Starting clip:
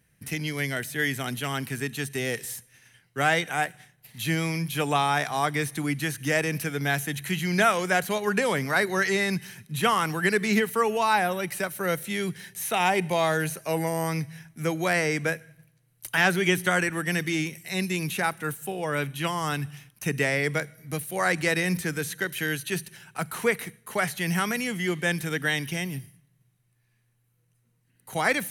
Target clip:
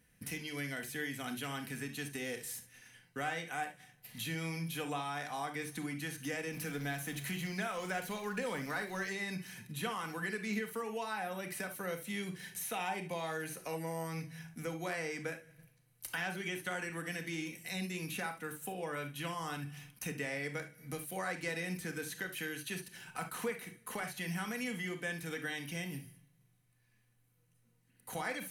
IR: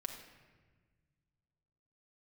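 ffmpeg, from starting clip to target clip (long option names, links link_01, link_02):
-filter_complex "[0:a]asettb=1/sr,asplit=3[link_01][link_02][link_03];[link_01]atrim=end=6.534[link_04];[link_02]atrim=start=6.53:end=9.13,asetpts=PTS-STARTPTS,afade=type=in:duration=0.004:curve=qsin,afade=type=out:start_time=2.596:duration=0.004:curve=qsin,aeval=exprs='val(0)+0.5*0.015*sgn(val(0))':channel_layout=same[link_05];[link_03]atrim=start=9.126[link_06];[link_04][link_05]acrossfade=duration=0.004:curve1=hsin:curve2=qsin[link_07];[link_07][link_06]acrossfade=duration=0.004:curve1=qsin:curve2=hsin,acompressor=threshold=-38dB:ratio=3[link_08];[1:a]atrim=start_sample=2205,afade=type=out:start_time=0.15:duration=0.01,atrim=end_sample=7056,asetrate=57330,aresample=44100[link_09];[link_08][link_09]afir=irnorm=-1:irlink=0,volume=2.5dB"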